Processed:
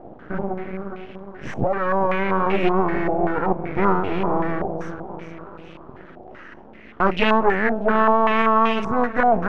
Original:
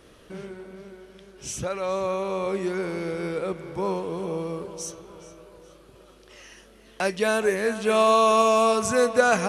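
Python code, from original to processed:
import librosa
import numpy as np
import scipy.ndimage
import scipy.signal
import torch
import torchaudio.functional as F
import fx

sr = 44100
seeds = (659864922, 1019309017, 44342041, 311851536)

y = scipy.signal.sosfilt(scipy.signal.butter(2, 120.0, 'highpass', fs=sr, output='sos'), x)
y = fx.low_shelf_res(y, sr, hz=390.0, db=7.5, q=1.5)
y = fx.rider(y, sr, range_db=5, speed_s=2.0)
y = np.maximum(y, 0.0)
y = fx.filter_held_lowpass(y, sr, hz=5.2, low_hz=730.0, high_hz=2600.0)
y = y * 10.0 ** (4.0 / 20.0)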